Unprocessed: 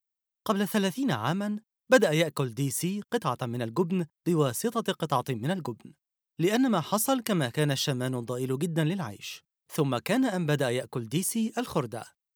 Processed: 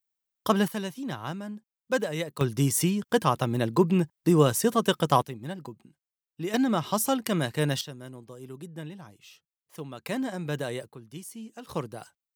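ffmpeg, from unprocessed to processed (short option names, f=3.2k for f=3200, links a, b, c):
-af "asetnsamples=n=441:p=0,asendcmd='0.68 volume volume -6.5dB;2.41 volume volume 5dB;5.22 volume volume -7dB;6.54 volume volume 0dB;7.81 volume volume -12.5dB;10.06 volume volume -5dB;10.89 volume volume -13dB;11.69 volume volume -3.5dB',volume=3.5dB"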